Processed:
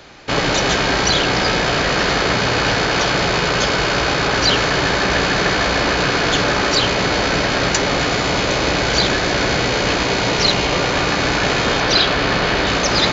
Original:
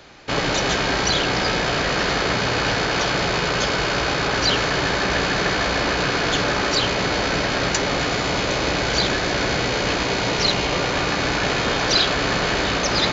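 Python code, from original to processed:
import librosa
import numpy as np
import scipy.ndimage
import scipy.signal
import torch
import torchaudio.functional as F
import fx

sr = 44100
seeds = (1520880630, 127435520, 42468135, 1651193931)

y = fx.lowpass(x, sr, hz=5500.0, slope=12, at=(11.8, 12.67))
y = y * librosa.db_to_amplitude(4.0)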